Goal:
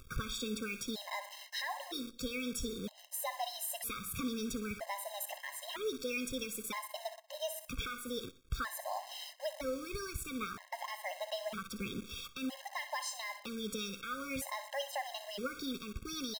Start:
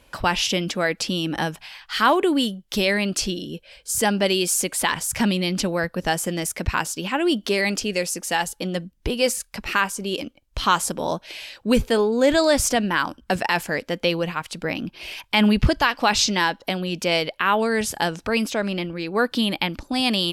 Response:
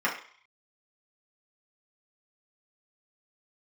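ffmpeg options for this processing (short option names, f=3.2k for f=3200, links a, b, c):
-filter_complex "[0:a]aecho=1:1:75|150|225|300:0.211|0.0845|0.0338|0.0135,acompressor=threshold=-28dB:ratio=2,lowshelf=f=200:g=9,asetrate=54684,aresample=44100,equalizer=f=320:w=3:g=-13,bandreject=f=6.5k:w=16,asplit=2[a][b];[1:a]atrim=start_sample=2205[c];[b][c]afir=irnorm=-1:irlink=0,volume=-22.5dB[d];[a][d]amix=inputs=2:normalize=0,alimiter=limit=-17.5dB:level=0:latency=1:release=308,acrusher=bits=7:dc=4:mix=0:aa=0.000001,acompressor=mode=upward:threshold=-38dB:ratio=2.5,afftfilt=real='re*gt(sin(2*PI*0.52*pts/sr)*(1-2*mod(floor(b*sr/1024/540),2)),0)':imag='im*gt(sin(2*PI*0.52*pts/sr)*(1-2*mod(floor(b*sr/1024/540),2)),0)':win_size=1024:overlap=0.75,volume=-7.5dB"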